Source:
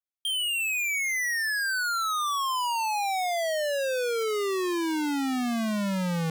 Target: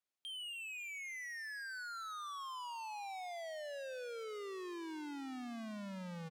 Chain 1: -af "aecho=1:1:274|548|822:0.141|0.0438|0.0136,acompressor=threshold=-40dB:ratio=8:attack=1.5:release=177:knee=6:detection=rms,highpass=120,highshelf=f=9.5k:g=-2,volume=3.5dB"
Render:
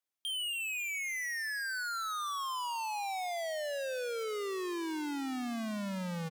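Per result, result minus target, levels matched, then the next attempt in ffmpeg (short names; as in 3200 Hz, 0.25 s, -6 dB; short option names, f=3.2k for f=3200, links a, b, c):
compressor: peak gain reduction -8.5 dB; 8000 Hz band +3.5 dB
-af "aecho=1:1:274|548|822:0.141|0.0438|0.0136,acompressor=threshold=-49.5dB:ratio=8:attack=1.5:release=177:knee=6:detection=rms,highpass=120,highshelf=f=9.5k:g=-2,volume=3.5dB"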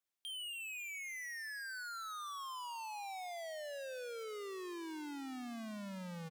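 8000 Hz band +3.5 dB
-af "aecho=1:1:274|548|822:0.141|0.0438|0.0136,acompressor=threshold=-49.5dB:ratio=8:attack=1.5:release=177:knee=6:detection=rms,highpass=120,highshelf=f=9.5k:g=-13.5,volume=3.5dB"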